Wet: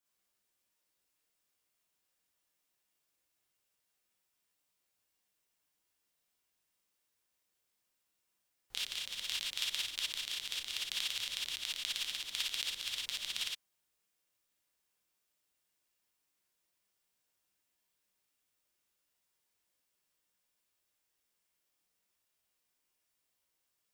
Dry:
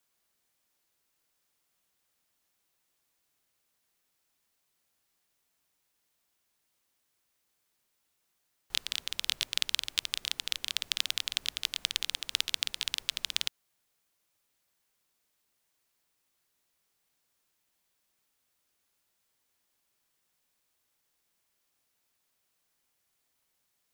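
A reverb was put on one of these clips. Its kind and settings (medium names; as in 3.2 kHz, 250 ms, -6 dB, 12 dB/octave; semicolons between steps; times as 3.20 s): gated-style reverb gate 80 ms rising, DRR -5 dB; trim -11 dB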